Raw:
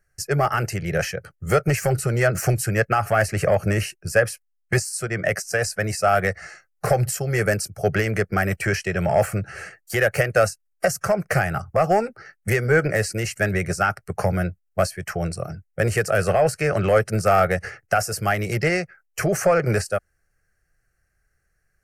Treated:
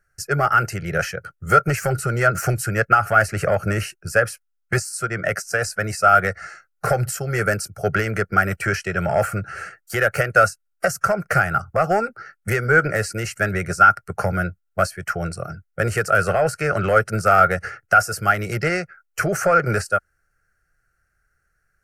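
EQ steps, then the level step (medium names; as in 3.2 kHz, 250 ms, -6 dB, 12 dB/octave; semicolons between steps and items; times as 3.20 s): peaking EQ 1.4 kHz +14.5 dB 0.21 oct; -1.0 dB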